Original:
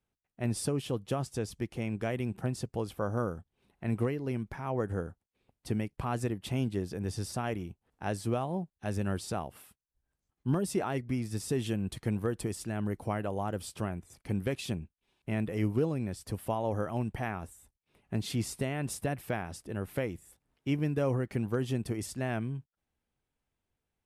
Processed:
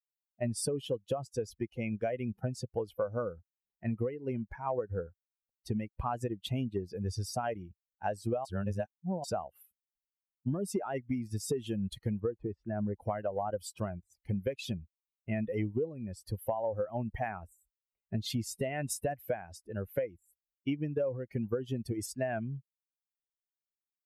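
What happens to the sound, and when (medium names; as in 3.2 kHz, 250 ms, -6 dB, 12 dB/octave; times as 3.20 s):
8.45–9.24 s: reverse
12.20–13.00 s: low-pass 1.8 kHz
whole clip: expander on every frequency bin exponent 2; peaking EQ 540 Hz +11.5 dB 0.9 oct; compression 16:1, threshold -36 dBFS; trim +7 dB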